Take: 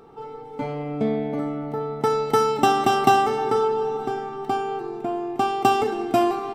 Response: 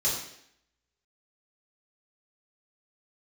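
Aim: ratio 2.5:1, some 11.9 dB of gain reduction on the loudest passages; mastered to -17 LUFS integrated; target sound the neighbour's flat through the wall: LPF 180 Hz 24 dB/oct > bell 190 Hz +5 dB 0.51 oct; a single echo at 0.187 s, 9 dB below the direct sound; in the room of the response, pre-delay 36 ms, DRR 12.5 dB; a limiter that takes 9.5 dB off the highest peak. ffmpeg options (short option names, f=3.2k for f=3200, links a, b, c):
-filter_complex "[0:a]acompressor=threshold=-32dB:ratio=2.5,alimiter=level_in=0.5dB:limit=-24dB:level=0:latency=1,volume=-0.5dB,aecho=1:1:187:0.355,asplit=2[a][b];[1:a]atrim=start_sample=2205,adelay=36[c];[b][c]afir=irnorm=-1:irlink=0,volume=-21dB[d];[a][d]amix=inputs=2:normalize=0,lowpass=f=180:w=0.5412,lowpass=f=180:w=1.3066,equalizer=f=190:t=o:w=0.51:g=5,volume=30dB"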